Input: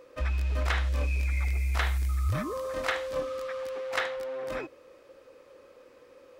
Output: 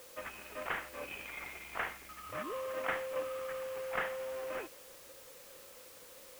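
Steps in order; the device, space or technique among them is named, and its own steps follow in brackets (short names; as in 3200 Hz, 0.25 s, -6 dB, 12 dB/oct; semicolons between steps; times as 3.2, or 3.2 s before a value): HPF 81 Hz 6 dB/oct; army field radio (BPF 370–2900 Hz; CVSD 16 kbps; white noise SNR 14 dB); gain -4 dB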